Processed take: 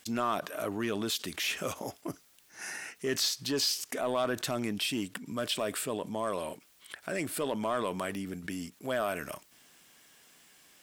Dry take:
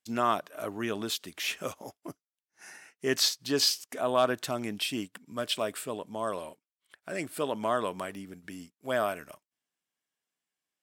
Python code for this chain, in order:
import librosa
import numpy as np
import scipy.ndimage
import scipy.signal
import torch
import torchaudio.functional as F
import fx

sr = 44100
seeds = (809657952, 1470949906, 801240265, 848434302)

p1 = fx.peak_eq(x, sr, hz=800.0, db=-2.0, octaves=1.6)
p2 = np.clip(p1, -10.0 ** (-28.0 / 20.0), 10.0 ** (-28.0 / 20.0))
p3 = p1 + (p2 * librosa.db_to_amplitude(-4.5))
p4 = fx.env_flatten(p3, sr, amount_pct=50)
y = p4 * librosa.db_to_amplitude(-7.0)